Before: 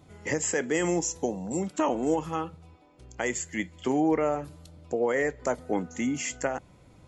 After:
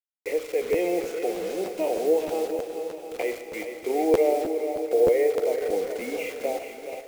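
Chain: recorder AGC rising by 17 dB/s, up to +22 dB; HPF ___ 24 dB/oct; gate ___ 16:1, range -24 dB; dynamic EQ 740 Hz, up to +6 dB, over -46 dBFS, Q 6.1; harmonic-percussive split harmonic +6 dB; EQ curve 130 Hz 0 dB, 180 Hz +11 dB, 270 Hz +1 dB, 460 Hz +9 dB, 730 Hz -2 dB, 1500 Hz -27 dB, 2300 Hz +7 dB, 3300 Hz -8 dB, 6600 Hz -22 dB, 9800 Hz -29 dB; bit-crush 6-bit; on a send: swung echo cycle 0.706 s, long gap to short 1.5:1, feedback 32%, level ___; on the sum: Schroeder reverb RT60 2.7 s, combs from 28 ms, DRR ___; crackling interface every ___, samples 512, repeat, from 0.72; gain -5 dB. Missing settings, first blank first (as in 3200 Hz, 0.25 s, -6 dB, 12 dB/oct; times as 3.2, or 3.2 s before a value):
390 Hz, -46 dBFS, -8.5 dB, 8.5 dB, 0.31 s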